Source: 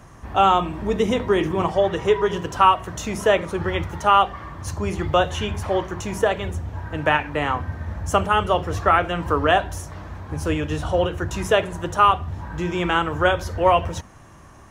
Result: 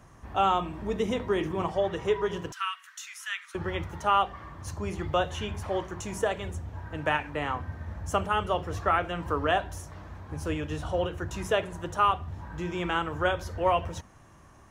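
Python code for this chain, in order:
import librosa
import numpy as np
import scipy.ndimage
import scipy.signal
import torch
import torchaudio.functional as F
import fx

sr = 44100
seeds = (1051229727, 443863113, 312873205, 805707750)

y = fx.steep_highpass(x, sr, hz=1400.0, slope=36, at=(2.52, 3.55))
y = fx.dynamic_eq(y, sr, hz=8100.0, q=1.3, threshold_db=-50.0, ratio=4.0, max_db=6, at=(5.72, 7.31))
y = F.gain(torch.from_numpy(y), -8.0).numpy()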